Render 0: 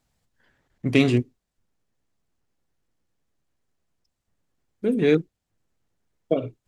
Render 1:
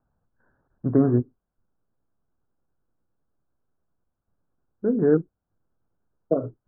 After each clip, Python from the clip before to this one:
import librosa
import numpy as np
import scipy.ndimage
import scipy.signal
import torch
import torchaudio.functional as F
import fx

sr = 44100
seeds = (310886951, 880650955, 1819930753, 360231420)

y = scipy.signal.sosfilt(scipy.signal.butter(16, 1600.0, 'lowpass', fs=sr, output='sos'), x)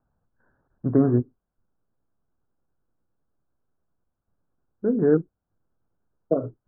y = x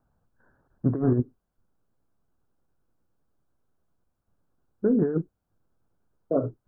y = fx.over_compress(x, sr, threshold_db=-21.0, ratio=-0.5)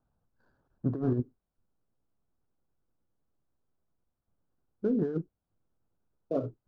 y = scipy.ndimage.median_filter(x, 15, mode='constant')
y = y * 10.0 ** (-6.0 / 20.0)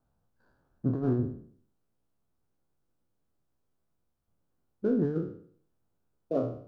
y = fx.spec_trails(x, sr, decay_s=0.56)